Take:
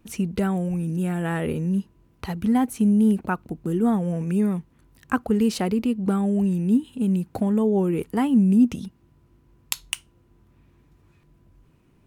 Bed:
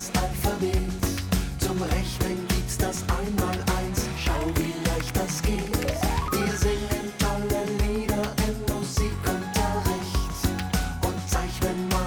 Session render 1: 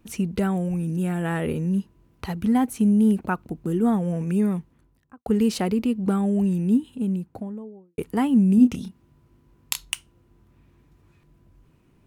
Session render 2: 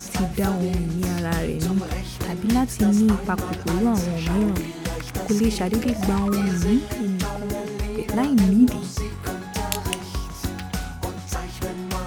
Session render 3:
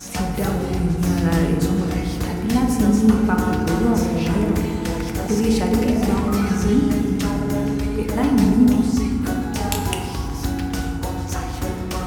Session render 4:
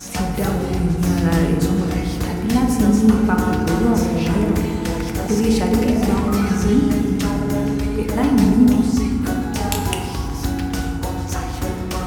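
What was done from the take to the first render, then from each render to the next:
4.56–5.26 s: studio fade out; 6.59–7.98 s: studio fade out; 8.55–9.85 s: doubling 28 ms -8 dB
add bed -3 dB
FDN reverb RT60 2.4 s, low-frequency decay 1.55×, high-frequency decay 0.35×, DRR 1 dB
trim +1.5 dB; peak limiter -2 dBFS, peak gain reduction 1 dB

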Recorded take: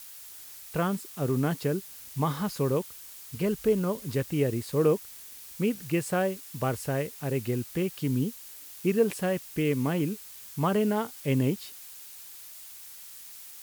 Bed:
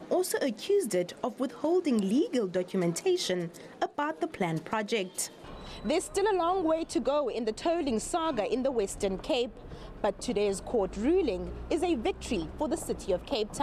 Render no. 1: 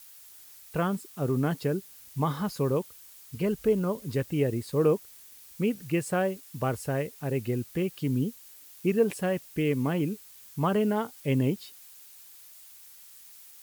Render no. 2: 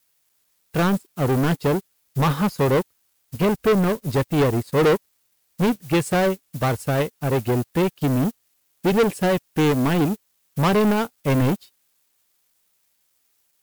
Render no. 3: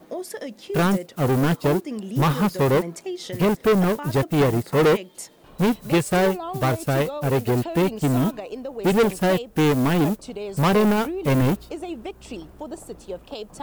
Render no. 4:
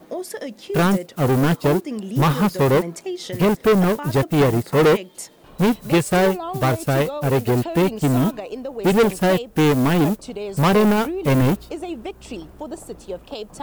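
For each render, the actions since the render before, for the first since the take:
noise reduction 6 dB, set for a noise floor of -46 dBFS
waveshaping leveller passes 5; upward expansion 2.5:1, over -34 dBFS
add bed -4 dB
trim +2.5 dB

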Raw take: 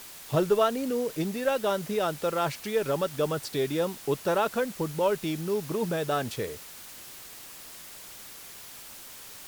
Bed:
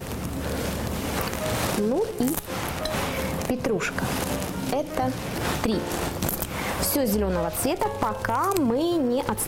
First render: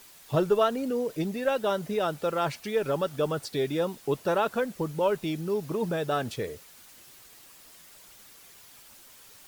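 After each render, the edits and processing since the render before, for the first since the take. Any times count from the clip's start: noise reduction 8 dB, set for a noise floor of -45 dBFS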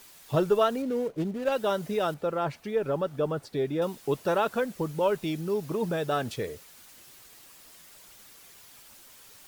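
0.82–1.52 s: median filter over 25 samples; 2.14–3.82 s: treble shelf 2.3 kHz -11.5 dB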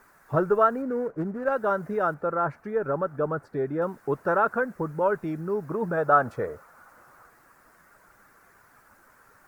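5.97–7.30 s: time-frequency box 470–1500 Hz +6 dB; resonant high shelf 2.2 kHz -13.5 dB, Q 3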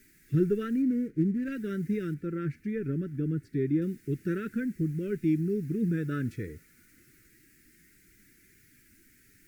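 Chebyshev band-stop 330–2100 Hz, order 3; harmonic-percussive split harmonic +6 dB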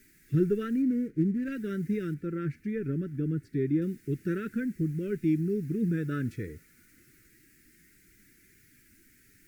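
no audible change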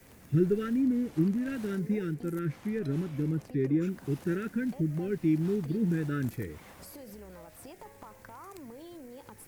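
add bed -24 dB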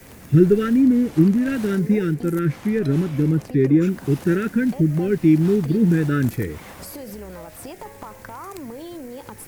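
trim +11.5 dB

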